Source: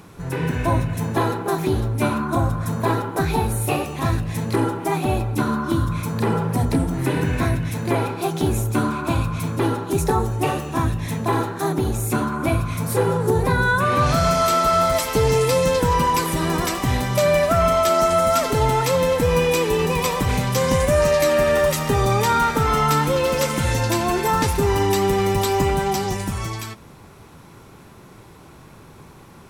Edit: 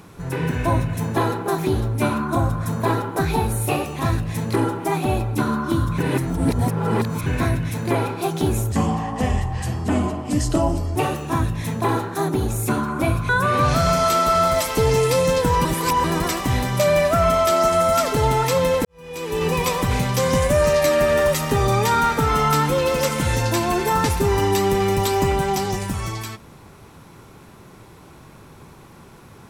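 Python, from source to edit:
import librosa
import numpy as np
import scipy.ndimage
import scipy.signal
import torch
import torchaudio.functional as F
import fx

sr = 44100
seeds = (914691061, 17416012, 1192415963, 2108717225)

y = fx.edit(x, sr, fx.reverse_span(start_s=5.98, length_s=1.28),
    fx.speed_span(start_s=8.72, length_s=1.68, speed=0.75),
    fx.cut(start_s=12.73, length_s=0.94),
    fx.reverse_span(start_s=16.03, length_s=0.39),
    fx.fade_in_span(start_s=19.23, length_s=0.63, curve='qua'), tone=tone)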